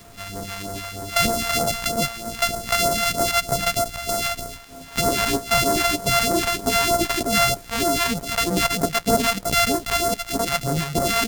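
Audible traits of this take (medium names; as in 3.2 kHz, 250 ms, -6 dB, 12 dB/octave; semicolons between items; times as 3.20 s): a buzz of ramps at a fixed pitch in blocks of 64 samples; phasing stages 2, 3.2 Hz, lowest notch 290–2700 Hz; a quantiser's noise floor 8-bit, dither none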